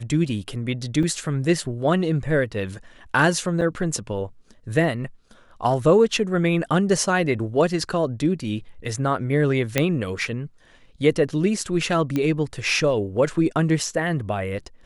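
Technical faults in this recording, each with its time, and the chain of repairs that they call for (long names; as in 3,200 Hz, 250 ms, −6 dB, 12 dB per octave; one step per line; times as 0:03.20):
0:01.03: drop-out 2.6 ms
0:03.61–0:03.62: drop-out 5.8 ms
0:09.78: click −4 dBFS
0:12.16: click −12 dBFS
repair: click removal
repair the gap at 0:01.03, 2.6 ms
repair the gap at 0:03.61, 5.8 ms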